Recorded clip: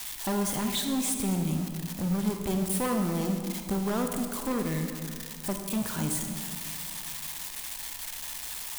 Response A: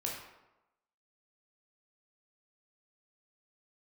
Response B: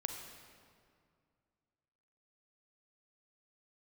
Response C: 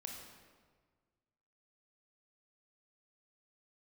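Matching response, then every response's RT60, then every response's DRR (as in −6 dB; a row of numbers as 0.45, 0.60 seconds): B; 1.0, 2.2, 1.6 seconds; −2.5, 4.0, 0.5 decibels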